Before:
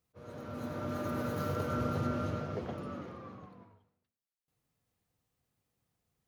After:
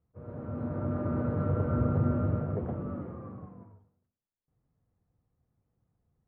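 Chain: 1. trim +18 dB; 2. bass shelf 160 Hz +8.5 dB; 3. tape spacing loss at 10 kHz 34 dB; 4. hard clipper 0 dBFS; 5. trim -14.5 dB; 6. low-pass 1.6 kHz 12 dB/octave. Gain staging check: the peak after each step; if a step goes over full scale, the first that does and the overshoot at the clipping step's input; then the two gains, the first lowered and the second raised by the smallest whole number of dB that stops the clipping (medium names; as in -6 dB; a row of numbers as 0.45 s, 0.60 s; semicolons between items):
-3.0 dBFS, -0.5 dBFS, -1.5 dBFS, -1.5 dBFS, -16.0 dBFS, -16.0 dBFS; nothing clips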